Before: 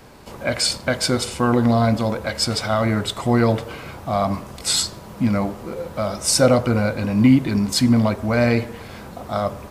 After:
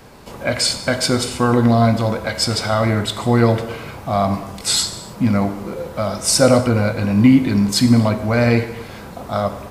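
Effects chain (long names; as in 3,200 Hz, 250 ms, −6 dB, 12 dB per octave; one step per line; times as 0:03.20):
reverb whose tail is shaped and stops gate 330 ms falling, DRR 9 dB
level +2 dB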